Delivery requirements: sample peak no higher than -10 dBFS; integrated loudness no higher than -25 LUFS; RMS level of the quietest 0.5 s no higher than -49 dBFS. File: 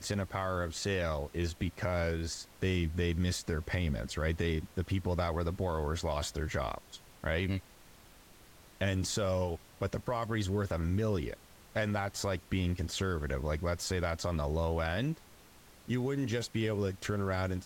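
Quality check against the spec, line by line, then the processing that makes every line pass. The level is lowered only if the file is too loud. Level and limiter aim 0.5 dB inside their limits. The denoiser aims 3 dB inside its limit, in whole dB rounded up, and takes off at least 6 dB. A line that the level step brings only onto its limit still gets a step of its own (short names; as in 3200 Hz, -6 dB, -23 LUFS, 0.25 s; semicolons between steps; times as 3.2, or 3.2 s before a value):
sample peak -18.0 dBFS: OK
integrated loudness -34.0 LUFS: OK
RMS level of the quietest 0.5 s -57 dBFS: OK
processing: none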